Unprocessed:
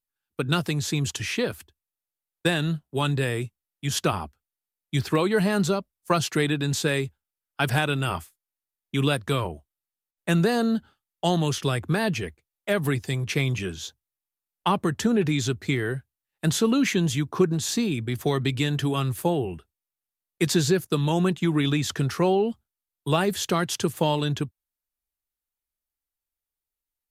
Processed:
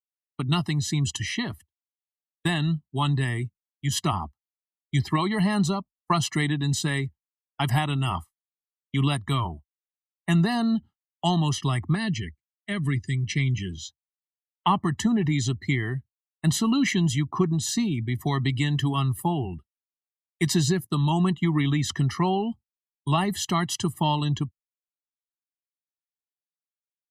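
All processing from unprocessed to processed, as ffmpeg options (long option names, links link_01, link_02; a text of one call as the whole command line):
ffmpeg -i in.wav -filter_complex "[0:a]asettb=1/sr,asplit=3[link_01][link_02][link_03];[link_01]atrim=end=11.954[link_04];[link_02]atrim=start=11.95:end=13.72,asetpts=PTS-STARTPTS,afade=type=in:duration=0.004:curve=qsin,afade=type=out:start_time=1.766:duration=0.004:curve=qsin,lowpass=frequency=9600:width=0.5412,lowpass=frequency=9600:width=1.3066,equalizer=frequency=790:width=1.3:gain=-13[link_05];[link_03]atrim=start=13.716[link_06];[link_04][link_05]acrossfade=duration=0.004:curve1=hsin:curve2=qsin[link_07];[link_07][link_06]acrossfade=duration=0.004:curve1=qsin:curve2=hsin,aecho=1:1:1:0.97,agate=range=-33dB:threshold=-35dB:ratio=3:detection=peak,afftdn=noise_reduction=17:noise_floor=-39,volume=-3dB" out.wav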